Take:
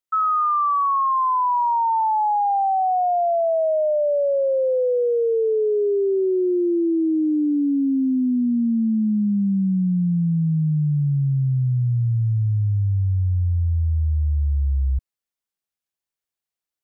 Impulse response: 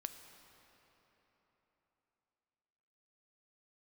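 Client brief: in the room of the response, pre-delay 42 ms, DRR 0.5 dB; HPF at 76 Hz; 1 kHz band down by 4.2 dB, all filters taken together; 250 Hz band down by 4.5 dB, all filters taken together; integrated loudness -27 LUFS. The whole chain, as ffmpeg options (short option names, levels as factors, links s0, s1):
-filter_complex "[0:a]highpass=76,equalizer=f=250:t=o:g=-6,equalizer=f=1000:t=o:g=-5,asplit=2[s0][s1];[1:a]atrim=start_sample=2205,adelay=42[s2];[s1][s2]afir=irnorm=-1:irlink=0,volume=1.33[s3];[s0][s3]amix=inputs=2:normalize=0,volume=0.501"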